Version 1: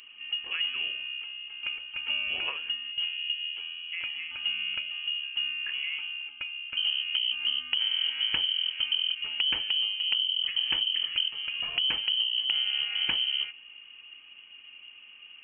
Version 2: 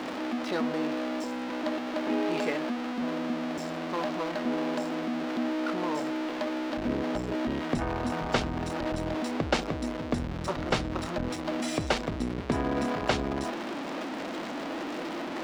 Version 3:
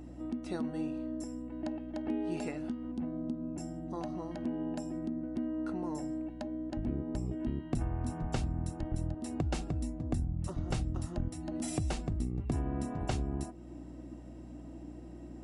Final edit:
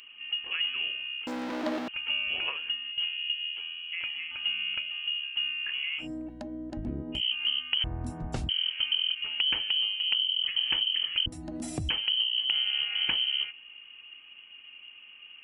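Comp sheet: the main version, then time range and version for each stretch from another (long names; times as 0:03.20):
1
0:01.27–0:01.88: punch in from 2
0:06.03–0:07.17: punch in from 3, crossfade 0.10 s
0:07.84–0:08.49: punch in from 3
0:11.26–0:11.89: punch in from 3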